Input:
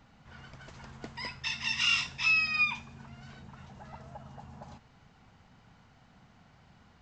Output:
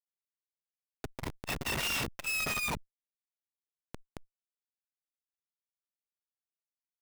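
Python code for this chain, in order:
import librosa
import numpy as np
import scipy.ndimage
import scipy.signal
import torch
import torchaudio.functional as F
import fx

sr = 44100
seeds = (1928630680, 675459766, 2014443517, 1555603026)

y = fx.tracing_dist(x, sr, depth_ms=0.066)
y = fx.schmitt(y, sr, flips_db=-34.5)
y = fx.transformer_sat(y, sr, knee_hz=190.0)
y = F.gain(torch.from_numpy(y), 4.5).numpy()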